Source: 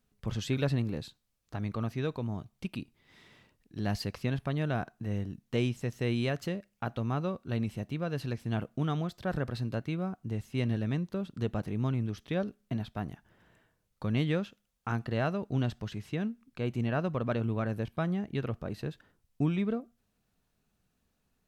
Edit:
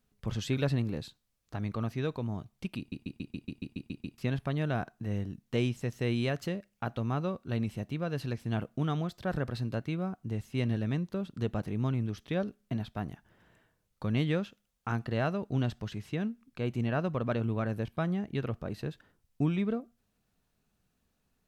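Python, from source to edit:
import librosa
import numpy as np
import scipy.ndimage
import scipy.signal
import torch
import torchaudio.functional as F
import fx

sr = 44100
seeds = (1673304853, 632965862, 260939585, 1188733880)

y = fx.edit(x, sr, fx.stutter_over(start_s=2.78, slice_s=0.14, count=10), tone=tone)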